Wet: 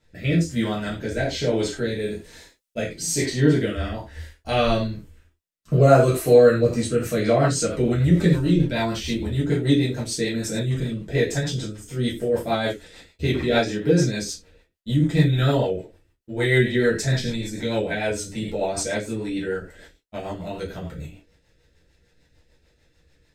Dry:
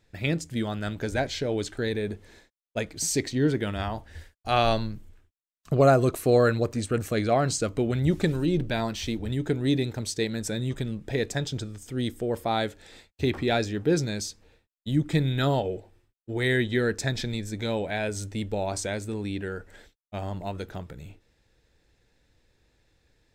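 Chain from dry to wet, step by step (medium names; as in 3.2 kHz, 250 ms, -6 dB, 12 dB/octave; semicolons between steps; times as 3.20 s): 1.99–2.77 s: treble shelf 3.5 kHz +9.5 dB; gated-style reverb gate 130 ms falling, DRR -7.5 dB; rotary cabinet horn 1.1 Hz, later 6.7 Hz, at 6.51 s; trim -1 dB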